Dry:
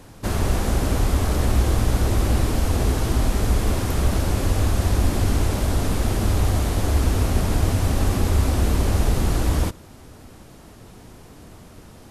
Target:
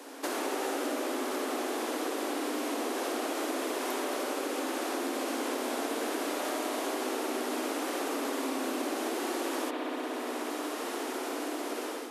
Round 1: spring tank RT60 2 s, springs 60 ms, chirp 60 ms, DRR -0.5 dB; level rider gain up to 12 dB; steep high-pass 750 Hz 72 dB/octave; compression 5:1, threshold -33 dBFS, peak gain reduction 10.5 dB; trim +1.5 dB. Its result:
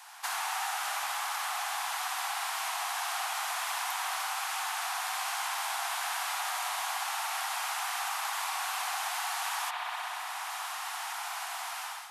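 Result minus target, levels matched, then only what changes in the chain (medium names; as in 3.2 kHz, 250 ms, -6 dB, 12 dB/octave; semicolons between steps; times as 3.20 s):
1 kHz band +2.5 dB
change: steep high-pass 260 Hz 72 dB/octave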